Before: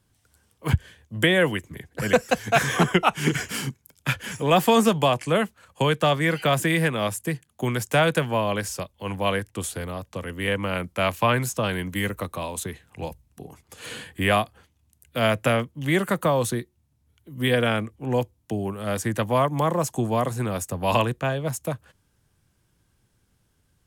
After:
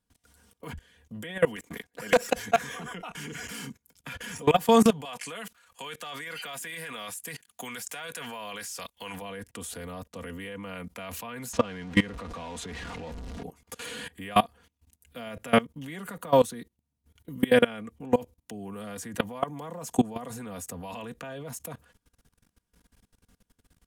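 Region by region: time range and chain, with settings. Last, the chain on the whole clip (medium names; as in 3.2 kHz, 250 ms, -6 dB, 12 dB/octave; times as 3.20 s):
1.56–2.27 s: high-pass 380 Hz 6 dB/octave + waveshaping leveller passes 2
5.05–9.22 s: de-esser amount 25% + tilt shelf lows -8.5 dB, about 710 Hz
11.53–13.43 s: jump at every zero crossing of -28 dBFS + distance through air 95 m
whole clip: comb 4.2 ms, depth 61%; peak limiter -15 dBFS; level held to a coarse grid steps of 22 dB; trim +5.5 dB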